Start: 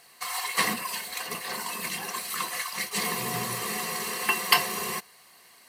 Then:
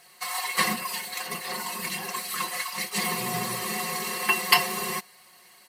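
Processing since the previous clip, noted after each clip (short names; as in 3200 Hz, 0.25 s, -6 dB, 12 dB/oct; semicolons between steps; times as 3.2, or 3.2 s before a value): comb 5.5 ms, depth 72%; gain -1 dB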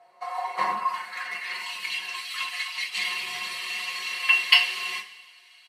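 band-pass sweep 690 Hz -> 2900 Hz, 0.47–1.7; downsampling 32000 Hz; two-slope reverb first 0.29 s, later 1.6 s, from -17 dB, DRR 0.5 dB; gain +5 dB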